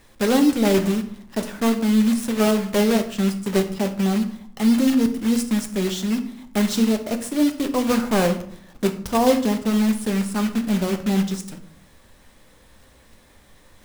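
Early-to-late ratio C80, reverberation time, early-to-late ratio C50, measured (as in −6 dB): 15.0 dB, 0.60 s, 11.5 dB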